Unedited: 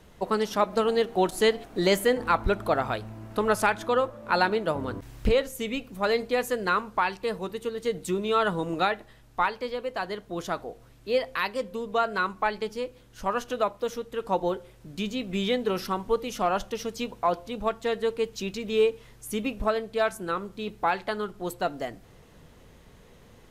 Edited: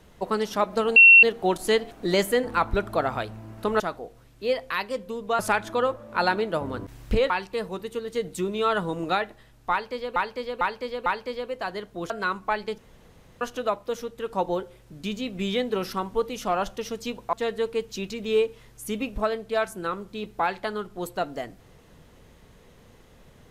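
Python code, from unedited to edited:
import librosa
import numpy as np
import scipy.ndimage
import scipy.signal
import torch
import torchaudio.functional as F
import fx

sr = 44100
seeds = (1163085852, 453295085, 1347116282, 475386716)

y = fx.edit(x, sr, fx.insert_tone(at_s=0.96, length_s=0.27, hz=2720.0, db=-8.0),
    fx.cut(start_s=5.44, length_s=1.56),
    fx.repeat(start_s=9.41, length_s=0.45, count=4),
    fx.move(start_s=10.45, length_s=1.59, to_s=3.53),
    fx.room_tone_fill(start_s=12.72, length_s=0.63),
    fx.cut(start_s=17.27, length_s=0.5), tone=tone)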